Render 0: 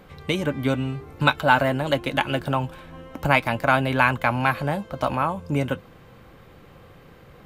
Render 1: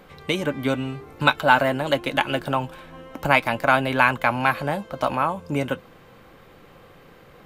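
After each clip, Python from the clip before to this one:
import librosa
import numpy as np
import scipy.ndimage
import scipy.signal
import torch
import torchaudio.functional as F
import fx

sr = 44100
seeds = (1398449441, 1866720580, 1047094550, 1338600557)

y = fx.peak_eq(x, sr, hz=74.0, db=-8.5, octaves=2.3)
y = y * 10.0 ** (1.5 / 20.0)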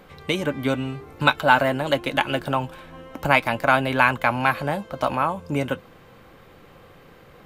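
y = fx.peak_eq(x, sr, hz=82.0, db=3.0, octaves=0.77)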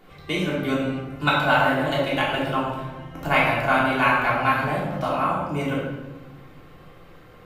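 y = fx.room_shoebox(x, sr, seeds[0], volume_m3=620.0, walls='mixed', distance_m=3.3)
y = y * 10.0 ** (-8.0 / 20.0)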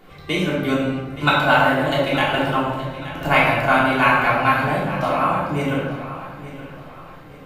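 y = fx.echo_feedback(x, sr, ms=873, feedback_pct=37, wet_db=-14.5)
y = y * 10.0 ** (3.5 / 20.0)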